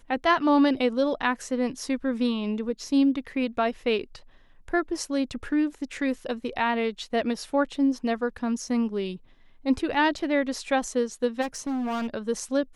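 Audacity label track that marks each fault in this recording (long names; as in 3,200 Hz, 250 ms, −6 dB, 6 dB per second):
11.410000	12.140000	clipping −26 dBFS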